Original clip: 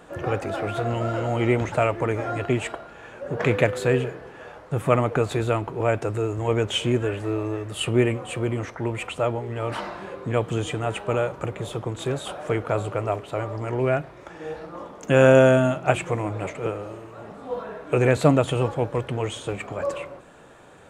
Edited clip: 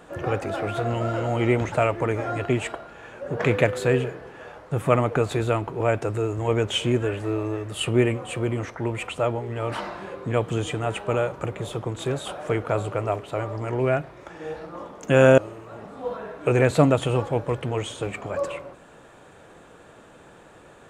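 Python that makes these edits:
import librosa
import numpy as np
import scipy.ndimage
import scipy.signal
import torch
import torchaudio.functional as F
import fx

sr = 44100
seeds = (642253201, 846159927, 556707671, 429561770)

y = fx.edit(x, sr, fx.cut(start_s=15.38, length_s=1.46), tone=tone)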